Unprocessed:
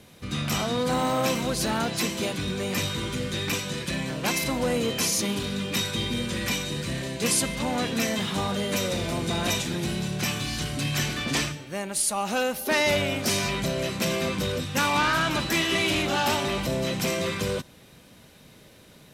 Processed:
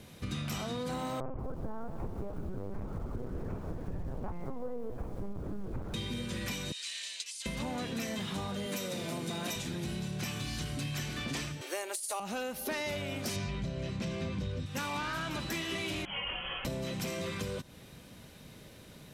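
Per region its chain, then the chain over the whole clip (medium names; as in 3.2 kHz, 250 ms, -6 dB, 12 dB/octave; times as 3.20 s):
1.20–5.94 s: LPC vocoder at 8 kHz pitch kept + low-pass 1.2 kHz 24 dB/octave + bit-crushed delay 179 ms, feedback 55%, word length 7-bit, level -13 dB
6.72–7.46 s: compressor with a negative ratio -29 dBFS, ratio -0.5 + Butterworth band-pass 5.1 kHz, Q 0.8
8.66–9.56 s: high-pass 140 Hz 24 dB/octave + treble shelf 11 kHz +7.5 dB
11.61–12.20 s: elliptic high-pass 340 Hz, stop band 60 dB + treble shelf 4.8 kHz +9.5 dB + compressor with a negative ratio -24 dBFS, ratio -0.5
13.36–14.66 s: low-pass 6.1 kHz + peaking EQ 68 Hz +11 dB 2.9 oct + band-stop 1.3 kHz, Q 24
16.05–16.65 s: high-pass 520 Hz 24 dB/octave + frequency inversion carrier 3.7 kHz + detune thickener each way 11 cents
whole clip: bass shelf 190 Hz +5 dB; compression 6:1, threshold -32 dBFS; trim -2 dB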